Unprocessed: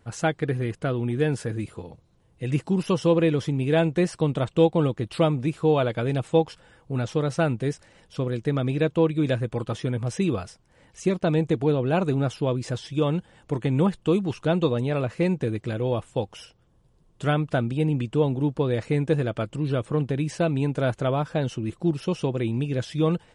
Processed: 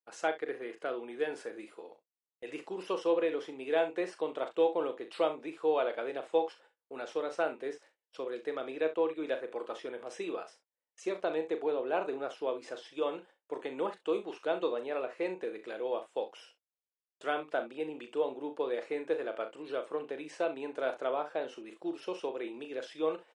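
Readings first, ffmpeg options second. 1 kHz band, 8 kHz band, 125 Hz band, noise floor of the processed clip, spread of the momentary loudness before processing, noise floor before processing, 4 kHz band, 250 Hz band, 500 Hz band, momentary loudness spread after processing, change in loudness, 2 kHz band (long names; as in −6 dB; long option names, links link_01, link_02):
−6.0 dB, below −10 dB, below −35 dB, below −85 dBFS, 7 LU, −61 dBFS, −9.5 dB, −16.0 dB, −7.0 dB, 11 LU, −10.0 dB, −7.0 dB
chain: -af "highpass=frequency=380:width=0.5412,highpass=frequency=380:width=1.3066,agate=range=-33dB:threshold=-49dB:ratio=16:detection=peak,highshelf=frequency=6000:gain=-9.5,aecho=1:1:38|65:0.335|0.178,adynamicequalizer=threshold=0.00562:dfrequency=3100:dqfactor=0.7:tfrequency=3100:tqfactor=0.7:attack=5:release=100:ratio=0.375:range=3.5:mode=cutabove:tftype=highshelf,volume=-6.5dB"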